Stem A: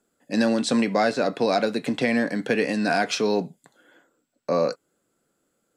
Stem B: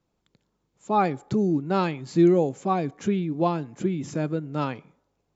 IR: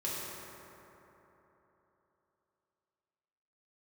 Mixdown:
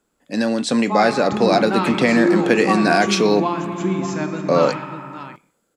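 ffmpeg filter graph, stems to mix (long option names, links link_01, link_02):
-filter_complex "[0:a]volume=0.5dB[link_01];[1:a]equalizer=frequency=125:width_type=o:width=1:gain=-10,equalizer=frequency=500:width_type=o:width=1:gain=-11,equalizer=frequency=1000:width_type=o:width=1:gain=4,equalizer=frequency=2000:width_type=o:width=1:gain=4,acompressor=threshold=-28dB:ratio=2,volume=-2dB,asplit=3[link_02][link_03][link_04];[link_03]volume=-4dB[link_05];[link_04]volume=-7.5dB[link_06];[2:a]atrim=start_sample=2205[link_07];[link_05][link_07]afir=irnorm=-1:irlink=0[link_08];[link_06]aecho=0:1:588:1[link_09];[link_01][link_02][link_08][link_09]amix=inputs=4:normalize=0,dynaudnorm=framelen=220:gausssize=7:maxgain=7dB"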